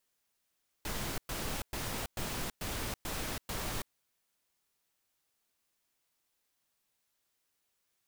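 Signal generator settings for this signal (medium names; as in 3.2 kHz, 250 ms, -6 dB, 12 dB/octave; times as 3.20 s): noise bursts pink, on 0.33 s, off 0.11 s, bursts 7, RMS -37 dBFS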